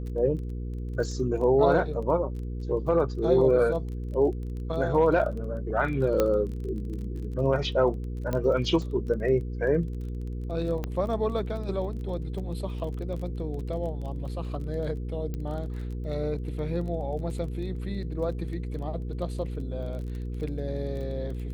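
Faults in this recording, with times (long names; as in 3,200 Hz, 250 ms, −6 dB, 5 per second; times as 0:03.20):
surface crackle 20 per second −36 dBFS
mains hum 60 Hz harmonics 8 −33 dBFS
0:06.20: click −11 dBFS
0:08.33: click −16 dBFS
0:10.84: click −18 dBFS
0:15.34: click −22 dBFS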